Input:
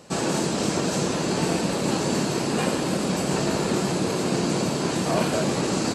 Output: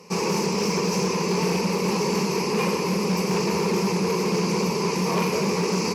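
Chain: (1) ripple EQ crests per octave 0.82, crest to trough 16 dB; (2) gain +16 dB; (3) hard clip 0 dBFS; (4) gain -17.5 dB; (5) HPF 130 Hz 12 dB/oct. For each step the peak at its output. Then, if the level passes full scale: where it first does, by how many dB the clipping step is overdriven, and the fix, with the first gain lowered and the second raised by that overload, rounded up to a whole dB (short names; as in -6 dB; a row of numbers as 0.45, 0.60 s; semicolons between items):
-7.5, +8.5, 0.0, -17.5, -11.5 dBFS; step 2, 8.5 dB; step 2 +7 dB, step 4 -8.5 dB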